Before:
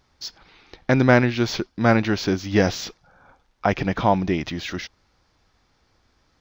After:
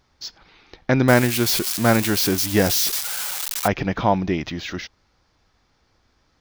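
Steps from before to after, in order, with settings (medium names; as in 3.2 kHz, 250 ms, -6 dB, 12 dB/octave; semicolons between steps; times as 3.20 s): 1.08–3.68 s: zero-crossing glitches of -14 dBFS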